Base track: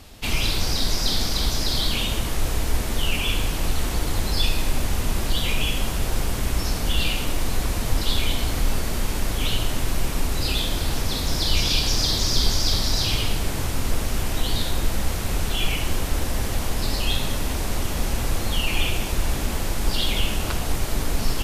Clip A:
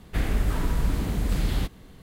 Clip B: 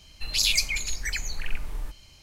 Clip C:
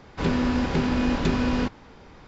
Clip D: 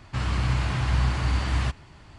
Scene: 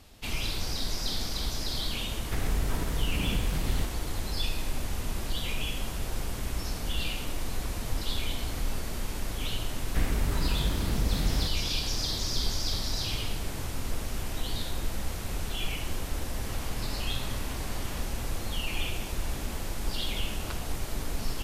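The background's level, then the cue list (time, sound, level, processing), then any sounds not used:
base track -9 dB
2.18 add A -1.5 dB + compressor, threshold -24 dBFS
9.81 add A -3.5 dB
16.33 add D -14.5 dB + tilt +1.5 dB/oct
not used: B, C

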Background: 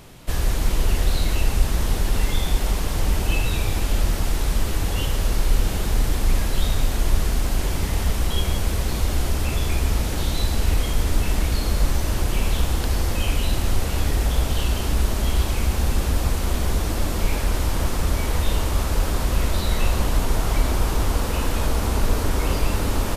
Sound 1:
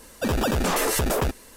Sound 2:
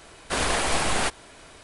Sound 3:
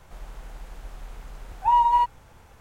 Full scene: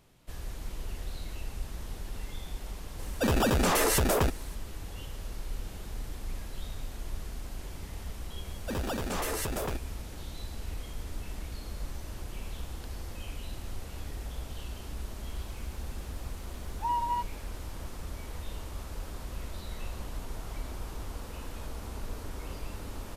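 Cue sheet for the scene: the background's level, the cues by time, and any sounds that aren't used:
background -18 dB
2.99 add 1 -2 dB
8.46 add 1 -10 dB + companded quantiser 8-bit
15.17 add 3 -8.5 dB + bell 800 Hz -6.5 dB 0.48 oct
not used: 2

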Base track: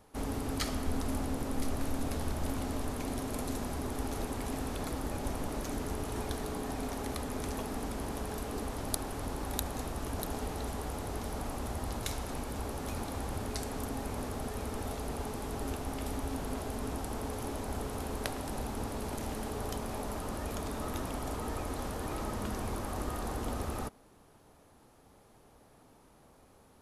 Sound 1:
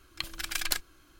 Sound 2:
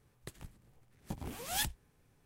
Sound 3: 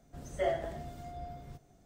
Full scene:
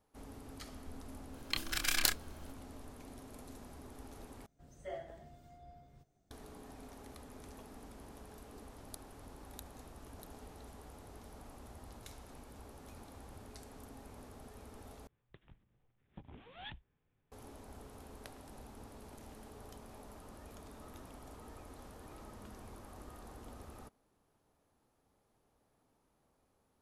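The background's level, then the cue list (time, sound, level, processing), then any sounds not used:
base track -15.5 dB
1.33 add 1 -1.5 dB + doubler 28 ms -5 dB
4.46 replace with 3 -13 dB
15.07 replace with 2 -11 dB + downsampling 8000 Hz

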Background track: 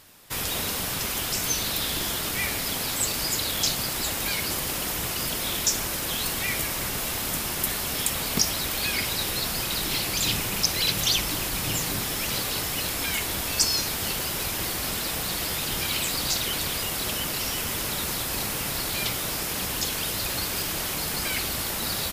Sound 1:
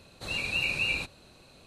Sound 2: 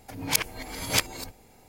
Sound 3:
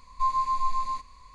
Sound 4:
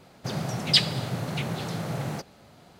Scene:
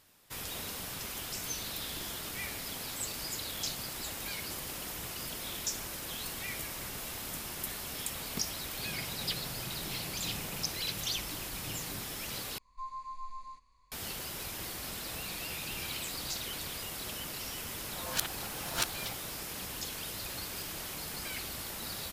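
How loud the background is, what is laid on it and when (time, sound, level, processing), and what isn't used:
background track -11.5 dB
8.54 add 4 -16.5 dB
12.58 replace with 3 -16.5 dB
14.88 add 1 -4 dB + compressor 4:1, threshold -42 dBFS
17.84 add 2 -5.5 dB + ring modulator 790 Hz

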